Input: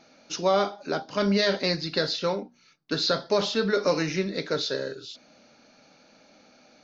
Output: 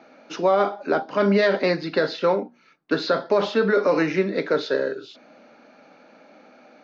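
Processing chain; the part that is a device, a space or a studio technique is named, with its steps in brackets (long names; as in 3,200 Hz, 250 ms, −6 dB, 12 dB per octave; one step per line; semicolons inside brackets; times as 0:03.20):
DJ mixer with the lows and highs turned down (three-way crossover with the lows and the highs turned down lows −21 dB, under 190 Hz, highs −18 dB, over 2,500 Hz; brickwall limiter −18 dBFS, peak gain reduction 6.5 dB)
level +8 dB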